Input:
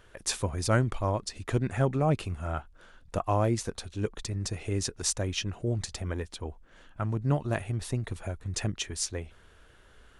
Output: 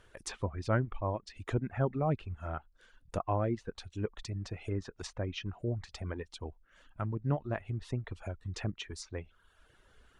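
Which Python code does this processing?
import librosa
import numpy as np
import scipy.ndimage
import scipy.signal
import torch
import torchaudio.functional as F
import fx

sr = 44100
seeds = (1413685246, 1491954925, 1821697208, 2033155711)

y = fx.env_lowpass_down(x, sr, base_hz=2000.0, full_db=-26.5)
y = fx.dereverb_blind(y, sr, rt60_s=0.82)
y = y * librosa.db_to_amplitude(-4.0)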